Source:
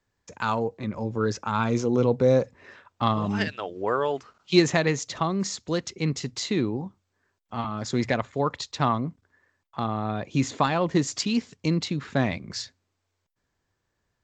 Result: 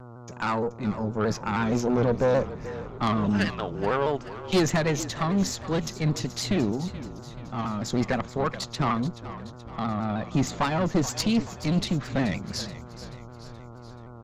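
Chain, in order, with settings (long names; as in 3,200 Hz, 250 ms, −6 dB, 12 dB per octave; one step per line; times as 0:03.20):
parametric band 190 Hz +5.5 dB 0.64 octaves
tube saturation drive 20 dB, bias 0.6
hum with harmonics 120 Hz, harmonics 12, −47 dBFS −5 dB per octave
on a send: echo with shifted repeats 429 ms, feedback 55%, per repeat −40 Hz, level −14 dB
on the sum: pitch modulation by a square or saw wave saw down 6.4 Hz, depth 100 cents
level +3 dB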